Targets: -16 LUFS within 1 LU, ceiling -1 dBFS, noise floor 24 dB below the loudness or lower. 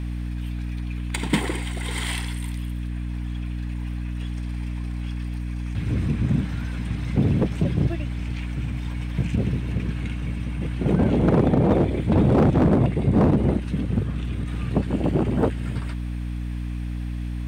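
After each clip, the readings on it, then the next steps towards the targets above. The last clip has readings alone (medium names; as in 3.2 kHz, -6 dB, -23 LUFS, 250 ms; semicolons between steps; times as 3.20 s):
clipped samples 1.0%; clipping level -12.5 dBFS; hum 60 Hz; highest harmonic 300 Hz; hum level -26 dBFS; loudness -24.5 LUFS; peak level -12.5 dBFS; loudness target -16.0 LUFS
-> clip repair -12.5 dBFS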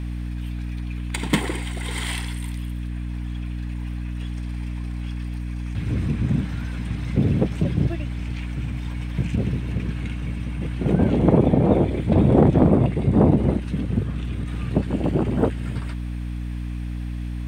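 clipped samples 0.0%; hum 60 Hz; highest harmonic 300 Hz; hum level -26 dBFS
-> de-hum 60 Hz, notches 5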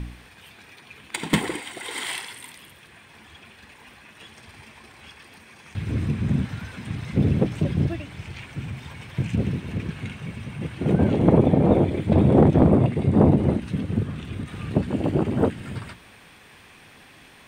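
hum not found; loudness -23.0 LUFS; peak level -3.5 dBFS; loudness target -16.0 LUFS
-> trim +7 dB; peak limiter -1 dBFS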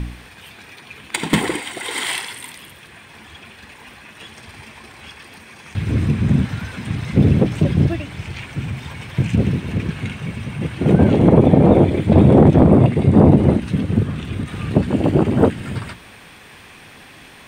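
loudness -16.5 LUFS; peak level -1.0 dBFS; noise floor -43 dBFS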